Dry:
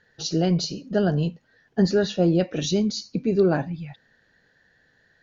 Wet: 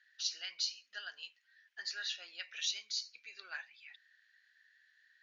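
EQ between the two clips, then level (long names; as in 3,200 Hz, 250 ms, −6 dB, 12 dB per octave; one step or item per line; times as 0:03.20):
four-pole ladder band-pass 2,300 Hz, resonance 40%
first difference
+14.5 dB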